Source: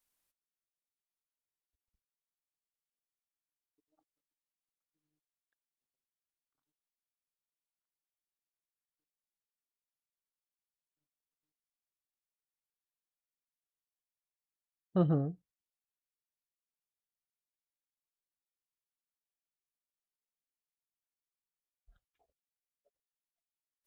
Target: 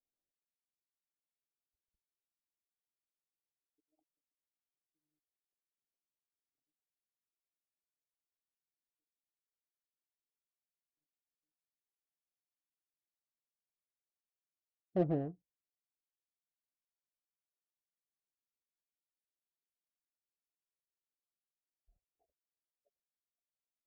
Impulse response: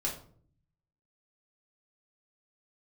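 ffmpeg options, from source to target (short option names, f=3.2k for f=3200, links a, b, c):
-af "lowpass=f=710:t=q:w=3.4,adynamicsmooth=sensitivity=2.5:basefreq=530,equalizer=f=340:t=o:w=0.75:g=6.5,volume=-8.5dB"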